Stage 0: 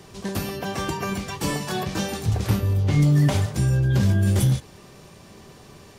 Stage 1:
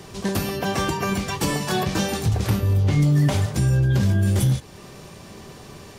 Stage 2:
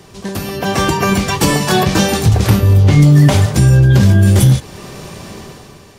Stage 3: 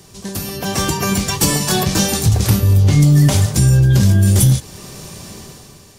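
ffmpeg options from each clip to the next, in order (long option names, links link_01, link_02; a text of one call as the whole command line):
ffmpeg -i in.wav -af "alimiter=limit=-17dB:level=0:latency=1:release=330,volume=5dB" out.wav
ffmpeg -i in.wav -af "dynaudnorm=framelen=100:gausssize=13:maxgain=14dB" out.wav
ffmpeg -i in.wav -af "bass=frequency=250:gain=4,treble=frequency=4000:gain=11,aeval=exprs='1.88*(cos(1*acos(clip(val(0)/1.88,-1,1)))-cos(1*PI/2))+0.0266*(cos(6*acos(clip(val(0)/1.88,-1,1)))-cos(6*PI/2))':channel_layout=same,volume=-6.5dB" out.wav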